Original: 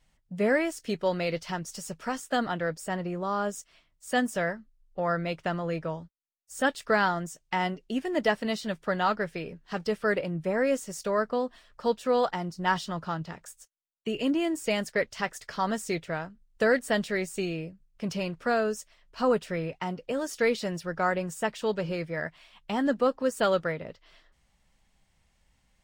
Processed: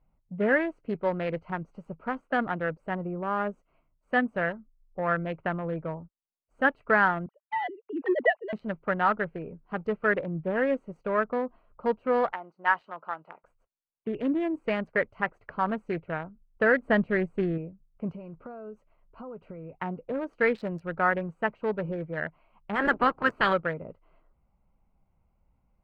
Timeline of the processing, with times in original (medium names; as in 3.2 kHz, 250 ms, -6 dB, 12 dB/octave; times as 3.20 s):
7.26–8.53 s: formants replaced by sine waves
12.32–13.44 s: high-pass 630 Hz
16.82–17.58 s: bass shelf 430 Hz +6.5 dB
18.11–19.75 s: compression 12:1, threshold -36 dBFS
20.37–21.30 s: treble shelf 4.5 kHz +7.5 dB
22.74–23.52 s: spectral peaks clipped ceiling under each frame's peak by 22 dB
whole clip: local Wiener filter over 25 samples; FFT filter 680 Hz 0 dB, 1.7 kHz +6 dB, 5.7 kHz -19 dB